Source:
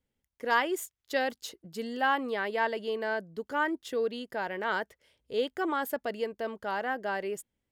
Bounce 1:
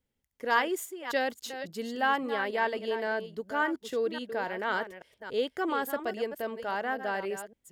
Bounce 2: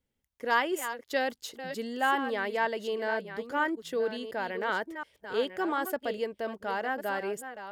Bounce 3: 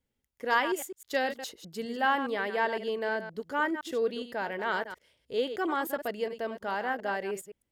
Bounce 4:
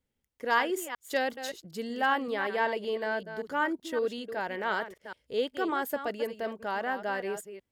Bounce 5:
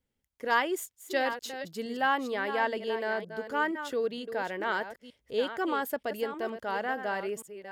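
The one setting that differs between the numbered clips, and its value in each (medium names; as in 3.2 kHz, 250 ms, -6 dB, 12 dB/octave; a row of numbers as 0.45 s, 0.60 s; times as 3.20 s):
chunks repeated in reverse, time: 279 ms, 719 ms, 103 ms, 190 ms, 464 ms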